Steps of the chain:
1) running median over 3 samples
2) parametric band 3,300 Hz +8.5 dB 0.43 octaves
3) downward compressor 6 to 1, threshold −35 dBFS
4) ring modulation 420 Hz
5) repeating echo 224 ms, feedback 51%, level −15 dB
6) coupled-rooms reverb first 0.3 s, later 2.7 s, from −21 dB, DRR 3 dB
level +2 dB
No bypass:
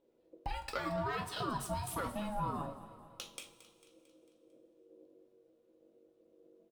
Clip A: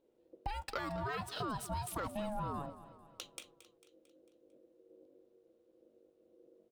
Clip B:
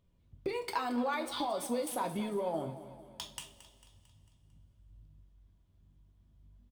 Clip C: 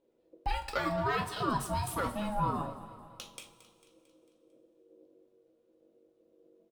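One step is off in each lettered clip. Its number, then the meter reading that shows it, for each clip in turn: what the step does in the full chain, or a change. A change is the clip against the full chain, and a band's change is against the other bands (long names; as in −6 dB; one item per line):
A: 6, change in integrated loudness −1.5 LU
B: 4, change in crest factor −3.5 dB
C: 3, average gain reduction 2.5 dB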